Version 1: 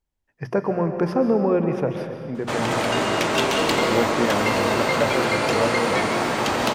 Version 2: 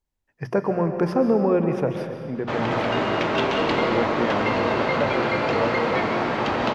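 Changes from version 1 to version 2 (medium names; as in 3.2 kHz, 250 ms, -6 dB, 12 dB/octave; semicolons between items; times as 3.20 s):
second voice -3.0 dB; background: add distance through air 220 m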